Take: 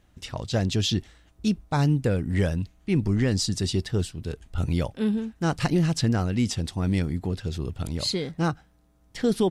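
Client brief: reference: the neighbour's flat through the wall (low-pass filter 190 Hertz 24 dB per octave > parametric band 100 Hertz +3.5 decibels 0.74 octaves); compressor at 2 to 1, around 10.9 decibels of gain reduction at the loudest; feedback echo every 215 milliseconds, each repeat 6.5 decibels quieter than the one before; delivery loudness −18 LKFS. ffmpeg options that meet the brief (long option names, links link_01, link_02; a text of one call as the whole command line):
ffmpeg -i in.wav -af "acompressor=threshold=-39dB:ratio=2,lowpass=frequency=190:width=0.5412,lowpass=frequency=190:width=1.3066,equalizer=frequency=100:width_type=o:width=0.74:gain=3.5,aecho=1:1:215|430|645|860|1075|1290:0.473|0.222|0.105|0.0491|0.0231|0.0109,volume=18.5dB" out.wav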